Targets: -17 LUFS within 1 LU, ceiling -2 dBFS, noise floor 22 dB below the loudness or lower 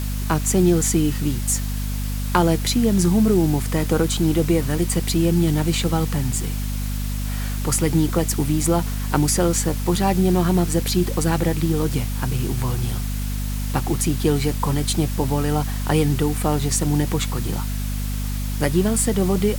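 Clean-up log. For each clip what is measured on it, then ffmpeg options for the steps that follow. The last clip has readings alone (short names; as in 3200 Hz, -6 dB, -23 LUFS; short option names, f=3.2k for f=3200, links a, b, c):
hum 50 Hz; harmonics up to 250 Hz; hum level -22 dBFS; noise floor -25 dBFS; noise floor target -43 dBFS; loudness -21.0 LUFS; peak -2.0 dBFS; loudness target -17.0 LUFS
-> -af "bandreject=f=50:t=h:w=4,bandreject=f=100:t=h:w=4,bandreject=f=150:t=h:w=4,bandreject=f=200:t=h:w=4,bandreject=f=250:t=h:w=4"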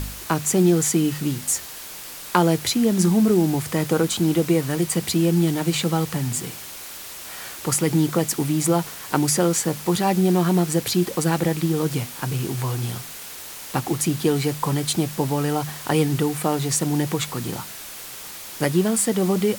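hum none; noise floor -37 dBFS; noise floor target -44 dBFS
-> -af "afftdn=nr=7:nf=-37"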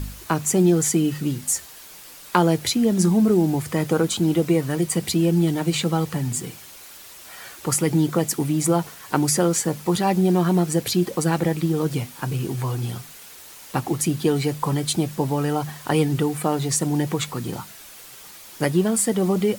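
noise floor -43 dBFS; noise floor target -44 dBFS
-> -af "afftdn=nr=6:nf=-43"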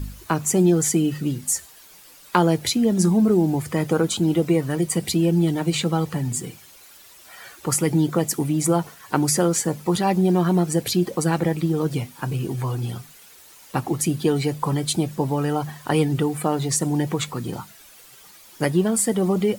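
noise floor -48 dBFS; loudness -22.0 LUFS; peak -2.0 dBFS; loudness target -17.0 LUFS
-> -af "volume=5dB,alimiter=limit=-2dB:level=0:latency=1"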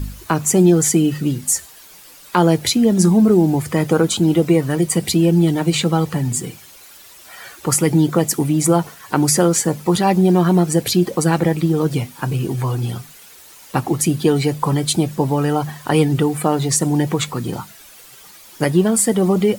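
loudness -17.0 LUFS; peak -2.0 dBFS; noise floor -43 dBFS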